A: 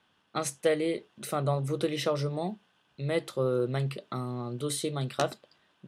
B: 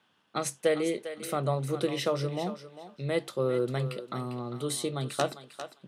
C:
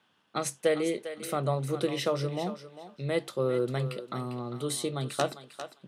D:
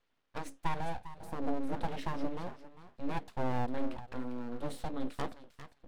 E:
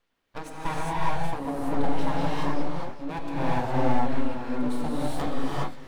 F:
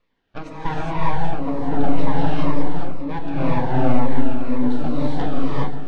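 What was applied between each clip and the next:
high-pass 110 Hz; thinning echo 400 ms, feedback 16%, high-pass 500 Hz, level -10 dB
no audible change
spectral replace 1.05–1.57 s, 990–4100 Hz; FFT filter 140 Hz 0 dB, 210 Hz -15 dB, 370 Hz -3 dB, 690 Hz -14 dB, 1.9 kHz -12 dB, 6.5 kHz -22 dB; full-wave rectifier; trim +3 dB
reverberation, pre-delay 3 ms, DRR -6.5 dB; trim +3 dB
distance through air 180 m; filtered feedback delay 152 ms, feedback 57%, low-pass 1.1 kHz, level -10 dB; Shepard-style phaser falling 2 Hz; trim +7 dB

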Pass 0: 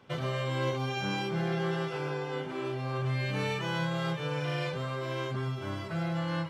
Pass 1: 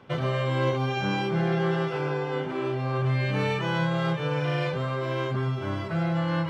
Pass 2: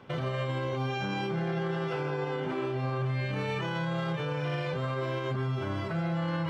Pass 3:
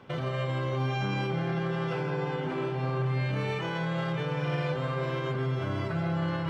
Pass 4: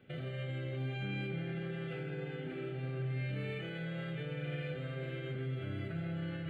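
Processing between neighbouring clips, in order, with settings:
reverse; upward compressor, threshold -34 dBFS; reverse; treble shelf 4.5 kHz -11 dB; trim +6 dB
peak limiter -24 dBFS, peak gain reduction 10 dB
feedback echo behind a low-pass 163 ms, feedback 83%, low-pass 3.2 kHz, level -12.5 dB
static phaser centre 2.4 kHz, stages 4; reverberation RT60 0.40 s, pre-delay 15 ms, DRR 11 dB; trim -7.5 dB

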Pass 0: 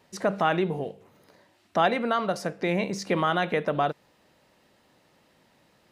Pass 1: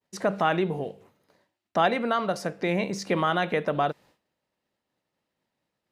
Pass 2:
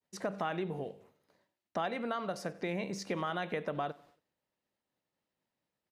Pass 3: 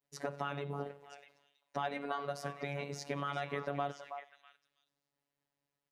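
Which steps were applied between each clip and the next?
expander -50 dBFS
compression 3:1, threshold -25 dBFS, peak gain reduction 6.5 dB; feedback delay 93 ms, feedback 45%, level -22 dB; trim -7 dB
repeats whose band climbs or falls 324 ms, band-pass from 900 Hz, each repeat 1.4 oct, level -6.5 dB; robot voice 142 Hz

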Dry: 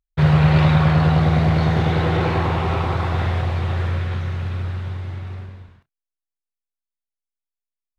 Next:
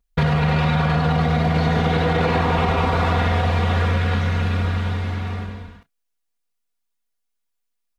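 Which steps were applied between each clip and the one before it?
comb 4.2 ms, depth 93%; peak limiter -12.5 dBFS, peak gain reduction 8 dB; compression, threshold -22 dBFS, peak gain reduction 5.5 dB; trim +7 dB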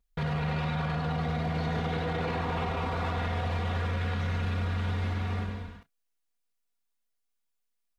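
peak limiter -19.5 dBFS, peak gain reduction 11.5 dB; trim -3.5 dB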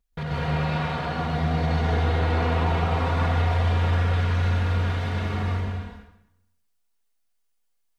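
plate-style reverb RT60 0.85 s, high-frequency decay 0.85×, pre-delay 115 ms, DRR -4.5 dB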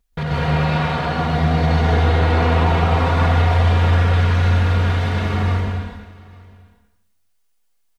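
delay 851 ms -23 dB; trim +7 dB

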